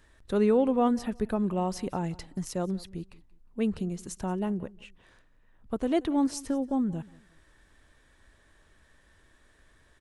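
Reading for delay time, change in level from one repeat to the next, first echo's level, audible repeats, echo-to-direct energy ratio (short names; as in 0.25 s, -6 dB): 0.18 s, -11.5 dB, -22.0 dB, 2, -21.5 dB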